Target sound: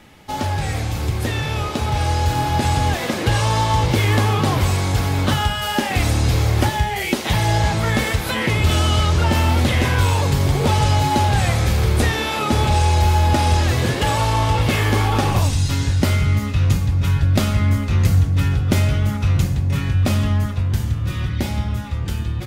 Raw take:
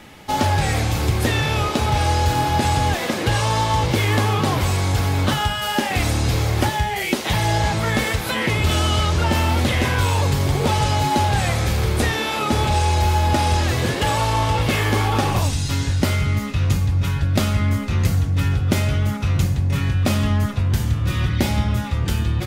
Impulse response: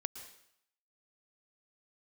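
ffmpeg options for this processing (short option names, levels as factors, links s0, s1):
-filter_complex "[0:a]dynaudnorm=f=150:g=31:m=3.76,asplit=2[s0][s1];[1:a]atrim=start_sample=2205,lowshelf=f=230:g=11.5[s2];[s1][s2]afir=irnorm=-1:irlink=0,volume=0.251[s3];[s0][s3]amix=inputs=2:normalize=0,volume=0.473"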